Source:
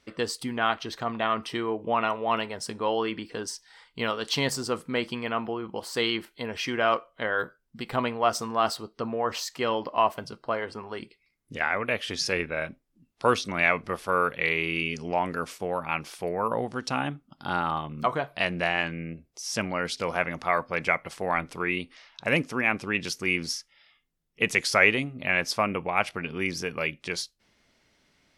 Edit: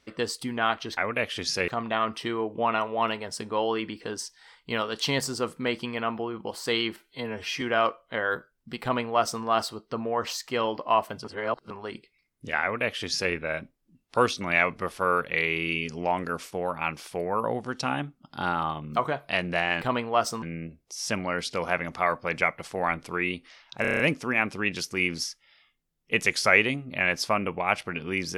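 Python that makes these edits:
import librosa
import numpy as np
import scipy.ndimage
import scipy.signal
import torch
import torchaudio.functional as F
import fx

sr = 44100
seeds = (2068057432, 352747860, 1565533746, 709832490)

y = fx.edit(x, sr, fx.stretch_span(start_s=6.26, length_s=0.43, factor=1.5),
    fx.duplicate(start_s=7.9, length_s=0.61, to_s=18.89),
    fx.reverse_span(start_s=10.32, length_s=0.46),
    fx.duplicate(start_s=11.69, length_s=0.71, to_s=0.97),
    fx.stutter(start_s=22.28, slice_s=0.03, count=7), tone=tone)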